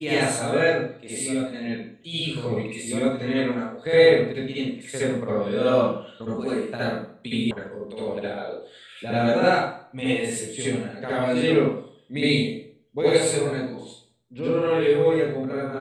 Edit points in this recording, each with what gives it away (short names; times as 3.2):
7.51 sound cut off